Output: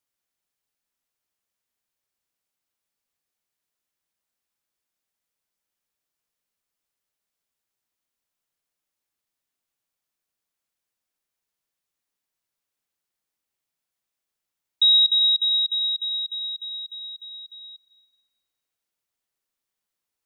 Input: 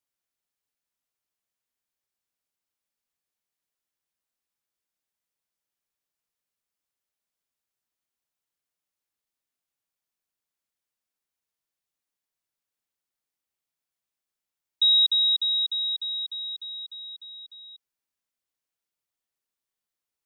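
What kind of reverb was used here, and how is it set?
digital reverb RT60 3.2 s, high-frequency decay 0.4×, pre-delay 80 ms, DRR 10.5 dB; gain +3 dB

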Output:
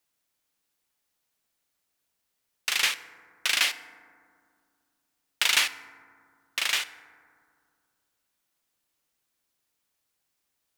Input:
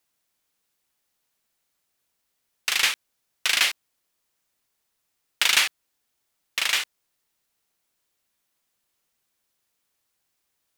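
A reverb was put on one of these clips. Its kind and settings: FDN reverb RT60 2.1 s, low-frequency decay 1.45×, high-frequency decay 0.3×, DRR 12 dB; gain -3 dB

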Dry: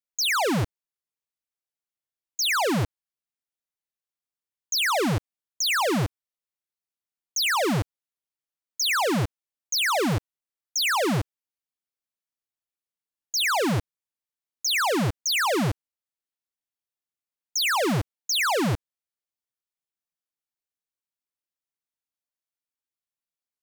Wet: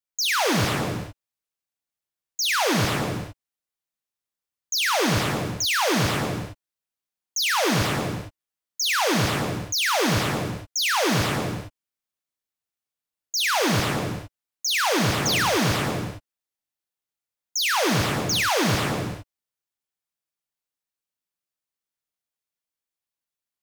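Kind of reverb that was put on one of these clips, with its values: non-linear reverb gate 0.49 s flat, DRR 1 dB

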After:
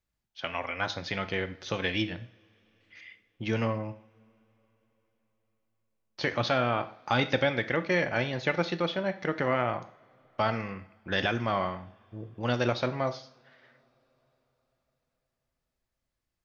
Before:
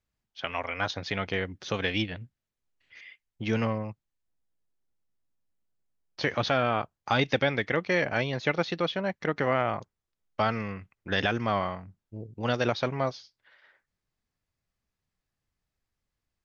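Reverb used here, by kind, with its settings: two-slope reverb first 0.48 s, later 4.5 s, from -28 dB, DRR 9 dB; gain -1.5 dB

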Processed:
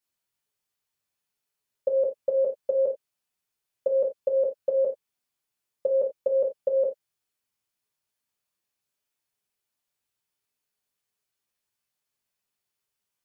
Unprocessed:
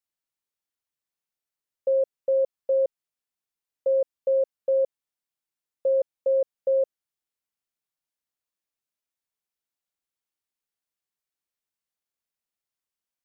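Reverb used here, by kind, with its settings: non-linear reverb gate 0.11 s falling, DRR -1.5 dB; gain +2 dB

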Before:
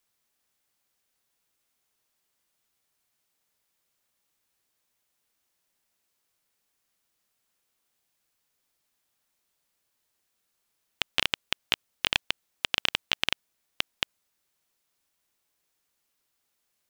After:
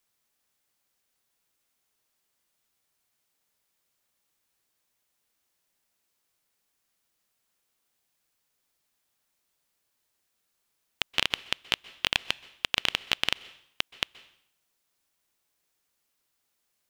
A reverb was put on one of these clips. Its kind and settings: plate-style reverb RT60 0.66 s, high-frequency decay 0.95×, pre-delay 0.115 s, DRR 19.5 dB

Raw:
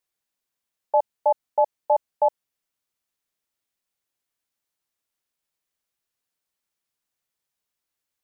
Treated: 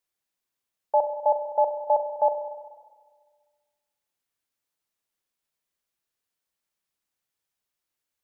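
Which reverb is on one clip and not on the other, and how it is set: spring tank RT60 1.6 s, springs 32/49 ms, chirp 25 ms, DRR 7.5 dB; gain -1.5 dB

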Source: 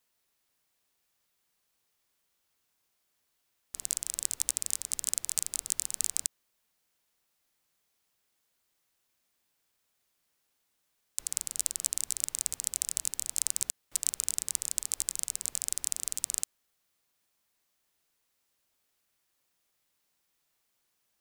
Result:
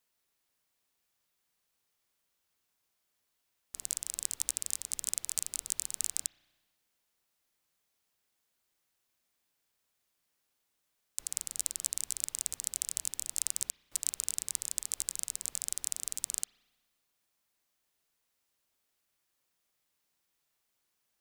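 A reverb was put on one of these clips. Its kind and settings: spring tank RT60 1.3 s, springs 33 ms, chirp 30 ms, DRR 13 dB; gain -3 dB

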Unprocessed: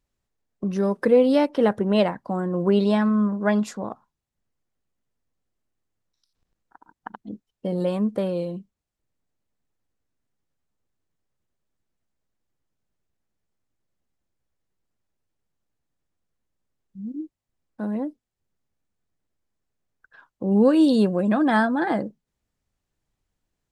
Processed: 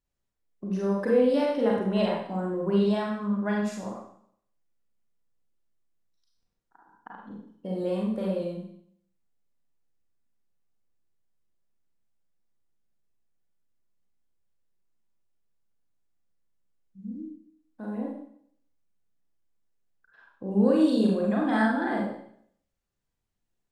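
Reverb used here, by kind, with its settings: Schroeder reverb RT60 0.64 s, combs from 32 ms, DRR -3 dB; gain -9.5 dB

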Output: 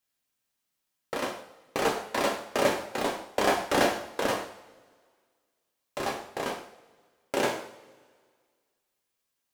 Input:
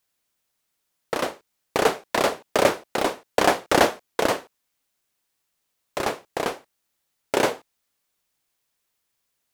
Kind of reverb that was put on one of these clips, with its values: two-slope reverb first 0.55 s, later 1.9 s, from -19 dB, DRR 0 dB; gain -8 dB

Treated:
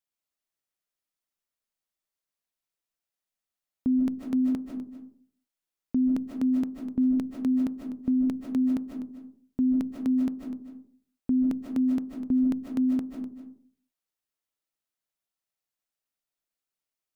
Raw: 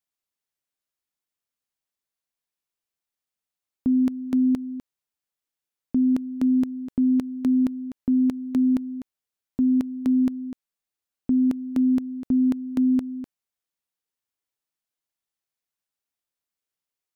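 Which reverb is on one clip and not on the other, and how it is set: digital reverb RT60 0.5 s, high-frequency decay 0.35×, pre-delay 0.11 s, DRR 2.5 dB; gain -3.5 dB

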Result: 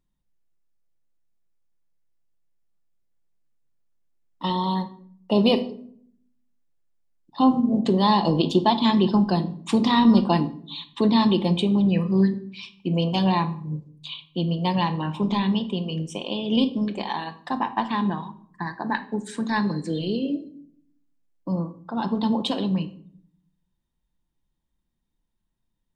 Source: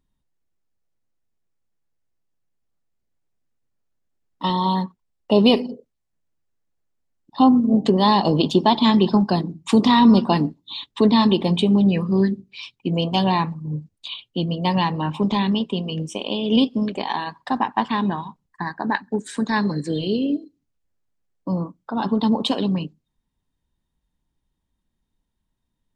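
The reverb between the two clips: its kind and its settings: shoebox room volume 930 m³, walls furnished, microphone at 0.82 m; gain -4 dB

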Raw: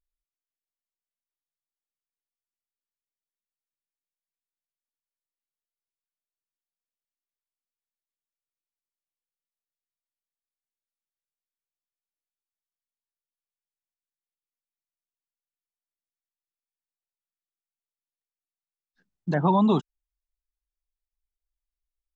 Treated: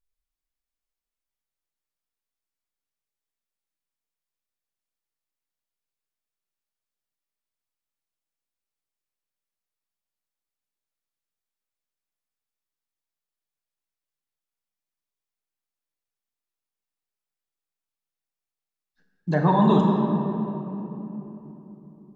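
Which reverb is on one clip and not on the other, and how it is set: shoebox room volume 210 m³, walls hard, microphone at 0.51 m

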